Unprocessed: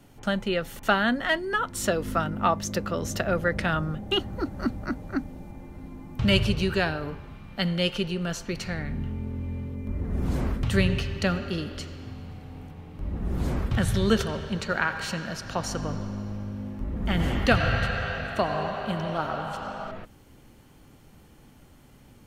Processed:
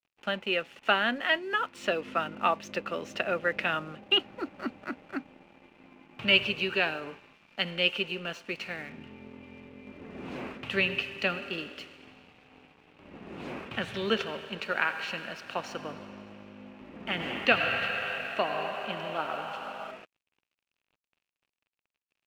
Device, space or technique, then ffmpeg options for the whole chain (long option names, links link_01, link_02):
pocket radio on a weak battery: -af "highpass=300,lowpass=3600,aeval=exprs='sgn(val(0))*max(abs(val(0))-0.00251,0)':channel_layout=same,equalizer=frequency=2600:width_type=o:width=0.46:gain=11.5,volume=-3dB"